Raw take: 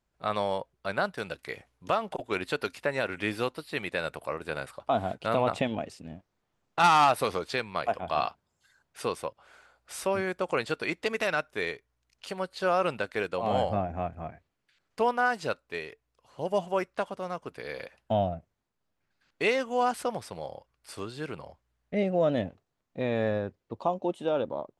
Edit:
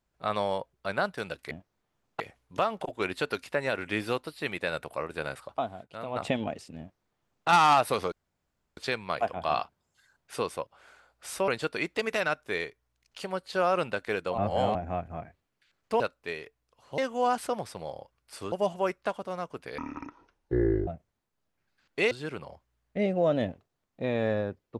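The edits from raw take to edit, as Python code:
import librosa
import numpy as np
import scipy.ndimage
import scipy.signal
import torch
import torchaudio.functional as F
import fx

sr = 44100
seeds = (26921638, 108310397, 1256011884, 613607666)

y = fx.edit(x, sr, fx.fade_down_up(start_s=4.85, length_s=0.71, db=-11.5, fade_s=0.14),
    fx.duplicate(start_s=6.1, length_s=0.69, to_s=1.51),
    fx.insert_room_tone(at_s=7.43, length_s=0.65),
    fx.cut(start_s=10.14, length_s=0.41),
    fx.reverse_span(start_s=13.45, length_s=0.37),
    fx.cut(start_s=15.07, length_s=0.39),
    fx.speed_span(start_s=17.7, length_s=0.6, speed=0.55),
    fx.move(start_s=19.54, length_s=1.54, to_s=16.44), tone=tone)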